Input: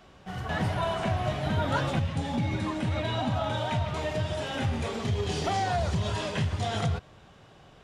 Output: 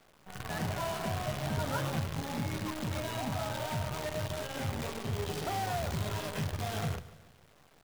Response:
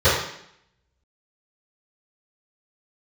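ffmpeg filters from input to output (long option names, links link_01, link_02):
-filter_complex "[0:a]highshelf=frequency=3300:gain=-8,bandreject=frequency=60:width_type=h:width=6,bandreject=frequency=120:width_type=h:width=6,bandreject=frequency=180:width_type=h:width=6,bandreject=frequency=240:width_type=h:width=6,bandreject=frequency=300:width_type=h:width=6,bandreject=frequency=360:width_type=h:width=6,acrusher=bits=6:dc=4:mix=0:aa=0.000001,aecho=1:1:145|290|435|580:0.126|0.0642|0.0327|0.0167,asplit=2[link_01][link_02];[1:a]atrim=start_sample=2205[link_03];[link_02][link_03]afir=irnorm=-1:irlink=0,volume=-40dB[link_04];[link_01][link_04]amix=inputs=2:normalize=0,volume=-6dB"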